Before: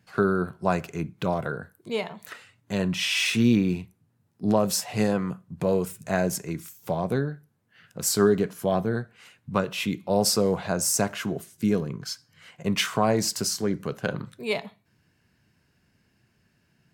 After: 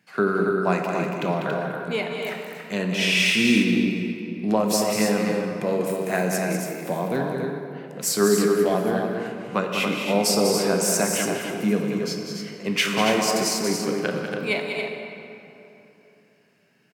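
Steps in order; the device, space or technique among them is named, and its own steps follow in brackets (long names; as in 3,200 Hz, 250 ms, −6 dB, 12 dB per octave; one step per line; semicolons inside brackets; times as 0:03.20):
stadium PA (high-pass filter 160 Hz 24 dB per octave; parametric band 2,200 Hz +6 dB 0.71 octaves; loudspeakers that aren't time-aligned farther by 67 metres −7 dB, 96 metres −6 dB; convolution reverb RT60 3.1 s, pre-delay 13 ms, DRR 4 dB)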